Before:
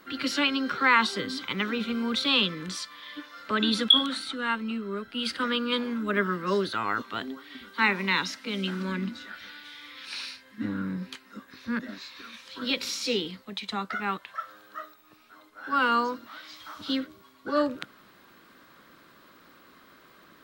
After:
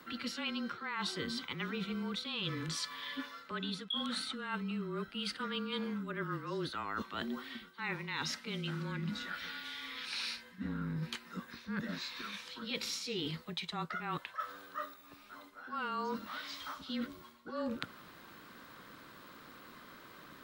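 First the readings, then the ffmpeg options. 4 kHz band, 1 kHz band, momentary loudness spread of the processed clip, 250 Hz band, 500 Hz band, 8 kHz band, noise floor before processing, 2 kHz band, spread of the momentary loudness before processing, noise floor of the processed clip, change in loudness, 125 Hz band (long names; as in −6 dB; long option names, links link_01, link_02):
−11.5 dB, −11.5 dB, 16 LU, −9.5 dB, −11.0 dB, −6.0 dB, −56 dBFS, −12.0 dB, 19 LU, −57 dBFS, −11.5 dB, −3.0 dB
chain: -af "areverse,acompressor=threshold=-36dB:ratio=12,areverse,afreqshift=-26,volume=1dB"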